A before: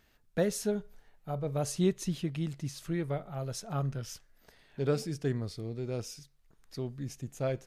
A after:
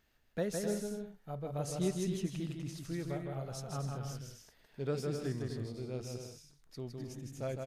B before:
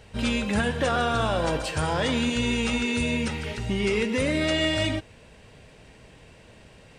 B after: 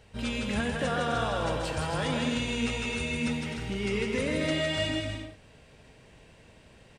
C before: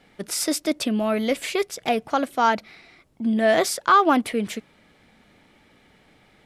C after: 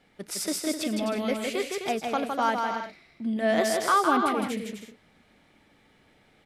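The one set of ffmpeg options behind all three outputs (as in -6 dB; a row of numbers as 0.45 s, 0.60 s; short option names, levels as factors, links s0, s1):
-af "aecho=1:1:160|256|313.6|348.2|368.9:0.631|0.398|0.251|0.158|0.1,volume=0.473"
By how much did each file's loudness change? -4.5 LU, -4.5 LU, -4.5 LU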